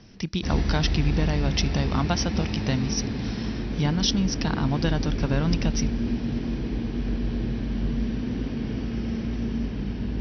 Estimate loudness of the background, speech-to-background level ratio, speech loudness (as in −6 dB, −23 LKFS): −29.0 LKFS, 2.0 dB, −27.0 LKFS